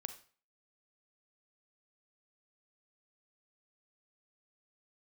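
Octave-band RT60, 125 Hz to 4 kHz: 0.45, 0.45, 0.40, 0.45, 0.40, 0.40 s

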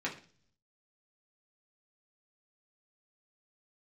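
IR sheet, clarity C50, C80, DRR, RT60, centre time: 11.0 dB, 16.0 dB, -4.5 dB, 0.45 s, 17 ms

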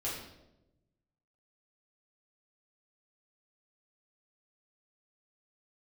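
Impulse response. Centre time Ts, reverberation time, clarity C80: 51 ms, 0.95 s, 6.0 dB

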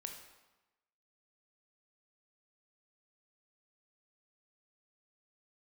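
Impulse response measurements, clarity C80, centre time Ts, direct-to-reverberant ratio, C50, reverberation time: 8.0 dB, 30 ms, 3.5 dB, 6.0 dB, 1.1 s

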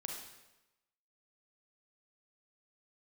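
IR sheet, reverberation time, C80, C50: 1.0 s, 5.5 dB, 2.0 dB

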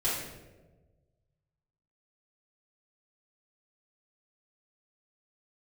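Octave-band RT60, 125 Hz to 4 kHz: 2.1, 1.5, 1.5, 1.0, 0.85, 0.70 s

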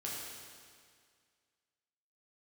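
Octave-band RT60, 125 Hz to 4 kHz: 2.0, 2.0, 2.0, 2.0, 2.0, 1.9 s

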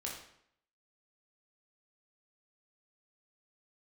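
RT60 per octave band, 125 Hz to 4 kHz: 0.65, 0.70, 0.70, 0.70, 0.65, 0.60 s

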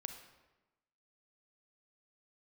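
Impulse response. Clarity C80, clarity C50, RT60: 9.5 dB, 7.5 dB, 1.1 s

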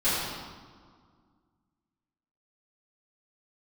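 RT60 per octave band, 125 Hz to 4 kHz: 2.3, 2.5, 1.8, 1.9, 1.3, 1.2 s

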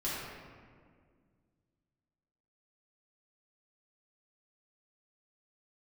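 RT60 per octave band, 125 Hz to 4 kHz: 2.7, 2.6, 2.1, 1.7, 1.5, 1.1 s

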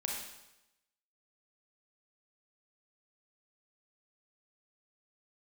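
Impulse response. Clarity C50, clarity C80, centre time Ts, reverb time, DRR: 1.0 dB, 4.5 dB, 56 ms, 0.95 s, -1.5 dB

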